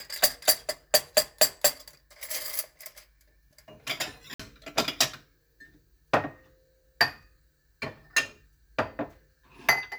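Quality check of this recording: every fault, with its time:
4.34–4.39 s: dropout 55 ms

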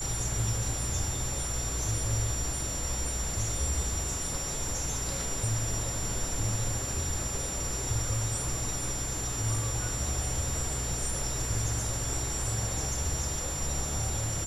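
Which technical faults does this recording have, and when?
whine 7.2 kHz -35 dBFS

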